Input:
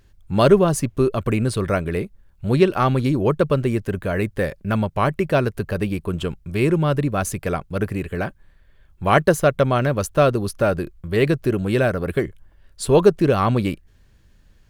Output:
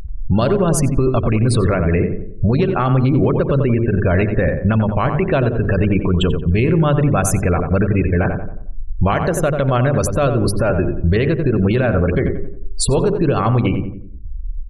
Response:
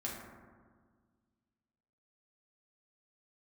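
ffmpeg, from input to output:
-filter_complex "[0:a]afftfilt=real='re*gte(hypot(re,im),0.0251)':imag='im*gte(hypot(re,im),0.0251)':win_size=1024:overlap=0.75,acompressor=mode=upward:threshold=-36dB:ratio=2.5,bandreject=f=50:t=h:w=6,bandreject=f=100:t=h:w=6,bandreject=f=150:t=h:w=6,bandreject=f=200:t=h:w=6,bandreject=f=250:t=h:w=6,bandreject=f=300:t=h:w=6,bandreject=f=350:t=h:w=6,bandreject=f=400:t=h:w=6,bandreject=f=450:t=h:w=6,acompressor=threshold=-24dB:ratio=12,lowshelf=f=92:g=10,asplit=2[a][b];[b]adelay=90,lowpass=f=1.5k:p=1,volume=-8dB,asplit=2[c][d];[d]adelay=90,lowpass=f=1.5k:p=1,volume=0.47,asplit=2[e][f];[f]adelay=90,lowpass=f=1.5k:p=1,volume=0.47,asplit=2[g][h];[h]adelay=90,lowpass=f=1.5k:p=1,volume=0.47,asplit=2[i][j];[j]adelay=90,lowpass=f=1.5k:p=1,volume=0.47[k];[c][e][g][i][k]amix=inputs=5:normalize=0[l];[a][l]amix=inputs=2:normalize=0,alimiter=level_in=19dB:limit=-1dB:release=50:level=0:latency=1,volume=-6dB"

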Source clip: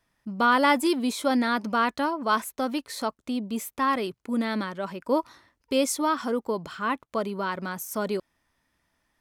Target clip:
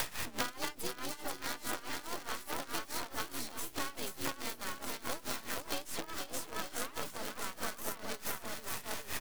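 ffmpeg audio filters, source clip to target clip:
-filter_complex "[0:a]aeval=exprs='val(0)+0.5*0.0251*sgn(val(0))':c=same,highpass=f=45:p=1,aecho=1:1:480|888|1235|1530|1780:0.631|0.398|0.251|0.158|0.1,acrossover=split=240|3700[a][b][c];[a]acompressor=threshold=-44dB:ratio=4[d];[b]acompressor=threshold=-36dB:ratio=4[e];[c]acompressor=threshold=-41dB:ratio=4[f];[d][e][f]amix=inputs=3:normalize=0,equalizer=f=230:t=o:w=2.2:g=-7,acompressor=threshold=-41dB:ratio=8,afreqshift=28,aeval=exprs='(mod(35.5*val(0)+1,2)-1)/35.5':c=same,acrusher=bits=7:dc=4:mix=0:aa=0.000001,asplit=3[g][h][i];[h]asetrate=22050,aresample=44100,atempo=2,volume=-10dB[j];[i]asetrate=58866,aresample=44100,atempo=0.749154,volume=-4dB[k];[g][j][k]amix=inputs=3:normalize=0,tremolo=f=4.7:d=0.85,volume=8.5dB"

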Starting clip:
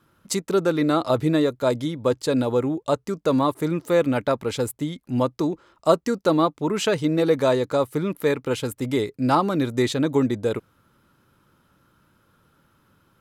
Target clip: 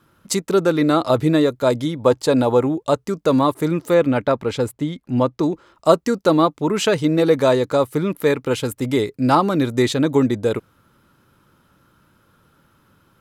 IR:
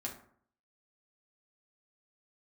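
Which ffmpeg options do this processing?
-filter_complex "[0:a]asettb=1/sr,asplit=3[a][b][c];[a]atrim=end=1.994[d];[b]atrim=start=1.99:end=2.67,asetpts=PTS-STARTPTS,afade=t=in:d=0.004:c=qsin,afade=t=out:st=0.676:d=0.004:c=qsin,equalizer=f=810:w=1.5:g=6.5[e];[c]atrim=start=2.666[f];[d][e]acrossfade=d=0.004:c1=hsin:c2=qsin[g];[g][f]acrossfade=d=0.004:c1=qsin:c2=hsin,asettb=1/sr,asplit=3[h][i][j];[h]atrim=end=3.944[k];[i]atrim=start=3.94:end=5.43,asetpts=PTS-STARTPTS,afade=t=in:d=0.004:c=qsin,afade=t=out:st=1.486:d=0.004:c=qsin,lowpass=f=3.6k:p=1[l];[j]atrim=start=5.426[m];[k][l]acrossfade=d=0.004:c1=hsin:c2=qsin[n];[n][m]acrossfade=d=0.004:c1=qsin:c2=hsin,volume=4dB"

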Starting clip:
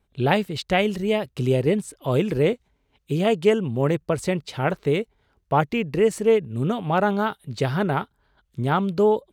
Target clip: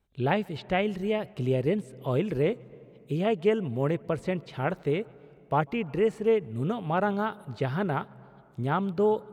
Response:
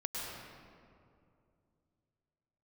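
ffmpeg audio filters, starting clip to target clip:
-filter_complex "[0:a]acrossover=split=3300[a][b];[b]acompressor=threshold=-50dB:ratio=4:attack=1:release=60[c];[a][c]amix=inputs=2:normalize=0,asplit=2[d][e];[1:a]atrim=start_sample=2205,lowpass=f=3.3k:p=1,adelay=145[f];[e][f]afir=irnorm=-1:irlink=0,volume=-25dB[g];[d][g]amix=inputs=2:normalize=0,volume=-5.5dB"

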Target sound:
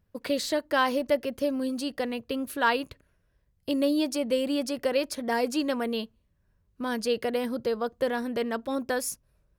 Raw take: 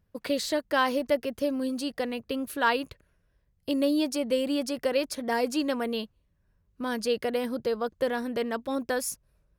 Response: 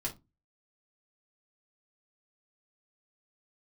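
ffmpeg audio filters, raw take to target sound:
-filter_complex "[0:a]asplit=2[a][b];[1:a]atrim=start_sample=2205,highshelf=f=4k:g=-11.5[c];[b][c]afir=irnorm=-1:irlink=0,volume=-22dB[d];[a][d]amix=inputs=2:normalize=0"

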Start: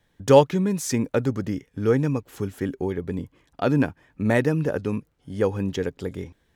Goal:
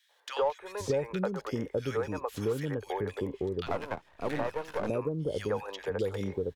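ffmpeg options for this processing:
-filter_complex "[0:a]equalizer=f=125:t=o:w=1:g=-7,equalizer=f=250:t=o:w=1:g=-9,equalizer=f=500:t=o:w=1:g=5,equalizer=f=1k:t=o:w=1:g=5,equalizer=f=4k:t=o:w=1:g=5,acrossover=split=490|1800[a][b][c];[b]adelay=90[d];[a]adelay=600[e];[e][d][c]amix=inputs=3:normalize=0,asettb=1/sr,asplit=3[f][g][h];[f]atrim=end=3.664[i];[g]atrim=start=3.66:end=4.89,asetpts=PTS-STARTPTS,afade=t=in:d=0.004:c=qsin,afade=t=out:st=1.226:d=0.004:c=qsin,aeval=exprs='max(val(0),0)':c=same[j];[h]atrim=start=4.886[k];[i][j]acrossfade=d=0.004:c1=hsin:c2=qsin[l];[l][k]acrossfade=d=0.004:c1=qsin:c2=hsin,acrossover=split=3800[m][n];[n]acompressor=threshold=-45dB:ratio=4:attack=1:release=60[o];[m][o]amix=inputs=2:normalize=0,asplit=2[p][q];[q]asoftclip=type=tanh:threshold=-18dB,volume=-10dB[r];[p][r]amix=inputs=2:normalize=0,acrossover=split=110|1100[s][t][u];[s]acompressor=threshold=-44dB:ratio=4[v];[t]acompressor=threshold=-30dB:ratio=4[w];[u]acompressor=threshold=-43dB:ratio=4[x];[v][w][x]amix=inputs=3:normalize=0"

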